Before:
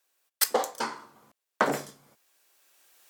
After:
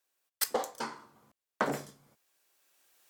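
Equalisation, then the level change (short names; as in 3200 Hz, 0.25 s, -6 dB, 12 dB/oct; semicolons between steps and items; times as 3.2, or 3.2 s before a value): low shelf 180 Hz +8.5 dB; -6.5 dB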